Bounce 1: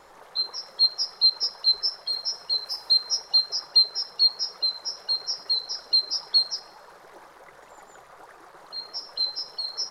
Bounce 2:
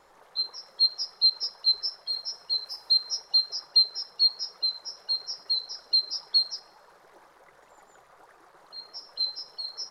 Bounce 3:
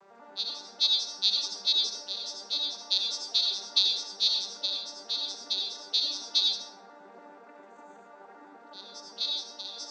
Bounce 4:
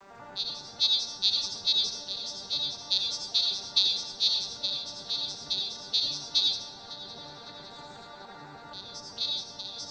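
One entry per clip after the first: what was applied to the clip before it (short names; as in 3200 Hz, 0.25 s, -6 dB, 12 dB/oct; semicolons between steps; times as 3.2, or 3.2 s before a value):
dynamic EQ 4100 Hz, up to +5 dB, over -31 dBFS, Q 2.2; gain -7 dB
arpeggiated vocoder minor triad, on G3, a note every 97 ms; reverb RT60 0.65 s, pre-delay 64 ms, DRR 1 dB; gain -2.5 dB
octaver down 1 oct, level +4 dB; multi-head echo 0.185 s, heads first and third, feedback 57%, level -20.5 dB; mismatched tape noise reduction encoder only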